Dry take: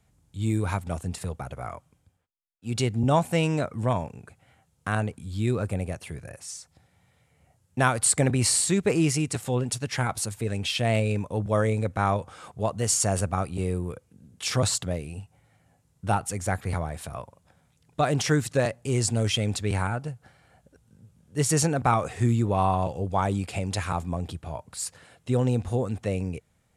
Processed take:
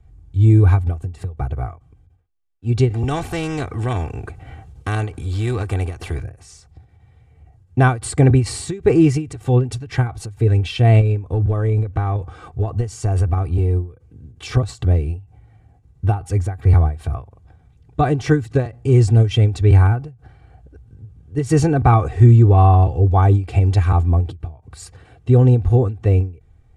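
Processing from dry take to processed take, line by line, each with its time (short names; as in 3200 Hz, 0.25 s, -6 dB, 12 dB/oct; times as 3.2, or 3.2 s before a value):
2.89–6.23 spectral compressor 2:1
11.01–14.57 compressor, threshold -26 dBFS
whole clip: RIAA curve playback; comb 2.6 ms, depth 68%; ending taper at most 170 dB/s; gain +3 dB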